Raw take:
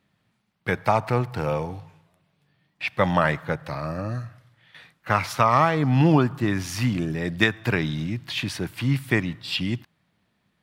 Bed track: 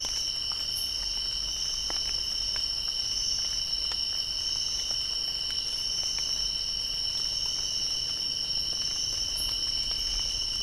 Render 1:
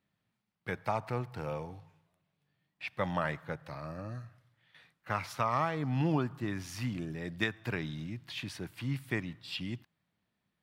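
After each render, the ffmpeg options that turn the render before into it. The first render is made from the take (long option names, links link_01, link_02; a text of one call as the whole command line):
ffmpeg -i in.wav -af "volume=-12dB" out.wav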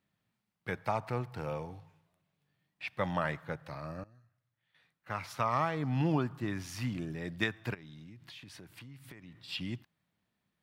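ffmpeg -i in.wav -filter_complex "[0:a]asplit=3[link_01][link_02][link_03];[link_01]afade=type=out:start_time=7.73:duration=0.02[link_04];[link_02]acompressor=threshold=-46dB:ratio=16:attack=3.2:release=140:knee=1:detection=peak,afade=type=in:start_time=7.73:duration=0.02,afade=type=out:start_time=9.48:duration=0.02[link_05];[link_03]afade=type=in:start_time=9.48:duration=0.02[link_06];[link_04][link_05][link_06]amix=inputs=3:normalize=0,asplit=2[link_07][link_08];[link_07]atrim=end=4.04,asetpts=PTS-STARTPTS,afade=type=out:start_time=4.036:duration=0.004:curve=hsin:silence=0.0944061[link_09];[link_08]atrim=start=4.04,asetpts=PTS-STARTPTS,afade=type=in:duration=1.43:curve=qua:silence=0.0944061[link_10];[link_09][link_10]concat=n=2:v=0:a=1" out.wav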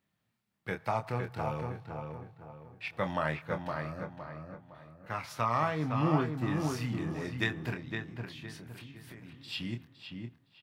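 ffmpeg -i in.wav -filter_complex "[0:a]asplit=2[link_01][link_02];[link_02]adelay=26,volume=-7dB[link_03];[link_01][link_03]amix=inputs=2:normalize=0,asplit=2[link_04][link_05];[link_05]adelay=512,lowpass=frequency=2200:poles=1,volume=-4.5dB,asplit=2[link_06][link_07];[link_07]adelay=512,lowpass=frequency=2200:poles=1,volume=0.38,asplit=2[link_08][link_09];[link_09]adelay=512,lowpass=frequency=2200:poles=1,volume=0.38,asplit=2[link_10][link_11];[link_11]adelay=512,lowpass=frequency=2200:poles=1,volume=0.38,asplit=2[link_12][link_13];[link_13]adelay=512,lowpass=frequency=2200:poles=1,volume=0.38[link_14];[link_06][link_08][link_10][link_12][link_14]amix=inputs=5:normalize=0[link_15];[link_04][link_15]amix=inputs=2:normalize=0" out.wav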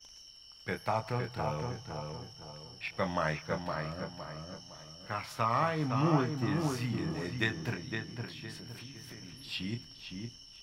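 ffmpeg -i in.wav -i bed.wav -filter_complex "[1:a]volume=-23dB[link_01];[0:a][link_01]amix=inputs=2:normalize=0" out.wav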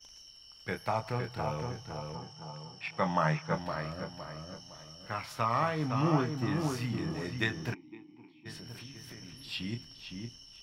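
ffmpeg -i in.wav -filter_complex "[0:a]asettb=1/sr,asplit=3[link_01][link_02][link_03];[link_01]atrim=end=2.154[link_04];[link_02]atrim=start=2.15:end=3.55,asetpts=PTS-STARTPTS,afade=type=in:duration=0.004:curve=qsin,afade=type=out:start_time=1.396:duration=0.004:curve=qsin,highpass=120,equalizer=frequency=160:width_type=q:width=4:gain=9,equalizer=frequency=860:width_type=q:width=4:gain=7,equalizer=frequency=1200:width_type=q:width=4:gain=4,equalizer=frequency=4000:width_type=q:width=4:gain=-4,lowpass=frequency=9400:width=0.5412,lowpass=frequency=9400:width=1.3066[link_05];[link_03]atrim=start=3.546[link_06];[link_04][link_05]acrossfade=duration=0.004:curve1=hsin:curve2=qsin[link_07];[link_07][link_06]acrossfade=duration=0.004:curve1=qsin:curve2=hsin,asplit=3[link_08][link_09][link_10];[link_08]afade=type=out:start_time=7.73:duration=0.02[link_11];[link_09]asplit=3[link_12][link_13][link_14];[link_12]bandpass=frequency=300:width_type=q:width=8,volume=0dB[link_15];[link_13]bandpass=frequency=870:width_type=q:width=8,volume=-6dB[link_16];[link_14]bandpass=frequency=2240:width_type=q:width=8,volume=-9dB[link_17];[link_15][link_16][link_17]amix=inputs=3:normalize=0,afade=type=in:start_time=7.73:duration=0.02,afade=type=out:start_time=8.45:duration=0.02[link_18];[link_10]afade=type=in:start_time=8.45:duration=0.02[link_19];[link_11][link_18][link_19]amix=inputs=3:normalize=0" out.wav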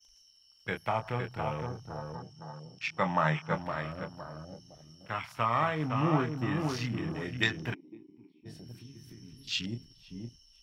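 ffmpeg -i in.wav -af "afwtdn=0.00562,highshelf=frequency=2900:gain=11" out.wav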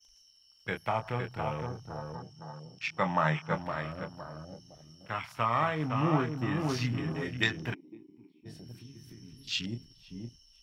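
ffmpeg -i in.wav -filter_complex "[0:a]asettb=1/sr,asplit=3[link_01][link_02][link_03];[link_01]atrim=end=6.684[link_04];[link_02]atrim=start=6.68:end=7.28,asetpts=PTS-STARTPTS,afade=type=in:duration=0.004:curve=qsin,afade=type=out:start_time=0.596:duration=0.004:curve=qsin,aecho=1:1:7.4:0.58,atrim=end_sample=26460[link_05];[link_03]atrim=start=7.276[link_06];[link_04][link_05]acrossfade=duration=0.004:curve1=hsin:curve2=qsin[link_07];[link_07][link_06]acrossfade=duration=0.004:curve1=qsin:curve2=hsin" out.wav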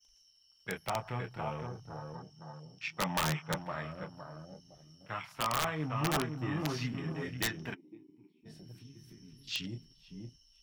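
ffmpeg -i in.wav -af "flanger=delay=4.3:depth=3:regen=-53:speed=1.3:shape=triangular,aeval=exprs='(mod(13.3*val(0)+1,2)-1)/13.3':channel_layout=same" out.wav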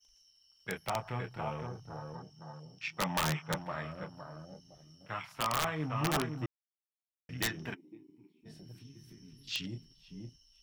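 ffmpeg -i in.wav -filter_complex "[0:a]asplit=3[link_01][link_02][link_03];[link_01]atrim=end=6.46,asetpts=PTS-STARTPTS,afade=type=out:start_time=6.456:duration=0.004:curve=hsin[link_04];[link_02]atrim=start=6.46:end=7.29,asetpts=PTS-STARTPTS,volume=0[link_05];[link_03]atrim=start=7.29,asetpts=PTS-STARTPTS,afade=type=in:duration=0.004:curve=hsin[link_06];[link_04][link_05][link_06]concat=n=3:v=0:a=1" out.wav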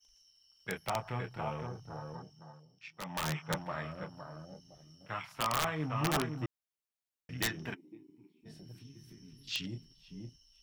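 ffmpeg -i in.wav -filter_complex "[0:a]asplit=3[link_01][link_02][link_03];[link_01]atrim=end=2.67,asetpts=PTS-STARTPTS,afade=type=out:start_time=2.2:duration=0.47:silence=0.281838[link_04];[link_02]atrim=start=2.67:end=3.01,asetpts=PTS-STARTPTS,volume=-11dB[link_05];[link_03]atrim=start=3.01,asetpts=PTS-STARTPTS,afade=type=in:duration=0.47:silence=0.281838[link_06];[link_04][link_05][link_06]concat=n=3:v=0:a=1" out.wav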